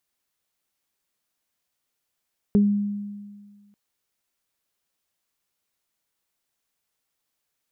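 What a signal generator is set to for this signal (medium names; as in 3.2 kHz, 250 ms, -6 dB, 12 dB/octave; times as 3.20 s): additive tone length 1.19 s, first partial 204 Hz, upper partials -7 dB, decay 1.69 s, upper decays 0.20 s, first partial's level -13 dB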